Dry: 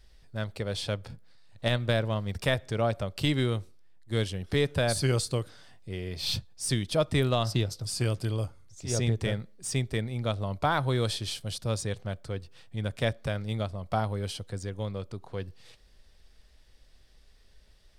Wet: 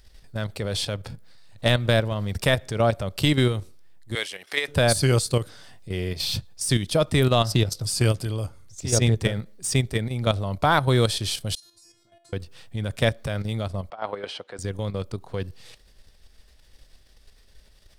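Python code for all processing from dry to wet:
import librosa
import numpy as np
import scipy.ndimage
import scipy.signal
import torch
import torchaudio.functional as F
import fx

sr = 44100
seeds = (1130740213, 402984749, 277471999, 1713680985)

y = fx.chain(x, sr, fx.highpass(hz=700.0, slope=12),
    fx.peak_eq(hz=2100.0, db=7.0, octaves=0.54), at=(4.15, 4.68))
y = fx.chain(y, sr, fx.highpass(hz=110.0, slope=24),
    fx.over_compress(threshold_db=-38.0, ratio=-0.5),
    fx.stiff_resonator(f0_hz=340.0, decay_s=0.72, stiffness=0.002), at=(11.55, 12.33))
y = fx.chain(y, sr, fx.bandpass_edges(low_hz=510.0, high_hz=2600.0),
    fx.over_compress(threshold_db=-35.0, ratio=-0.5), at=(13.9, 14.59))
y = fx.high_shelf(y, sr, hz=8300.0, db=6.5)
y = fx.level_steps(y, sr, step_db=9)
y = y * librosa.db_to_amplitude(9.0)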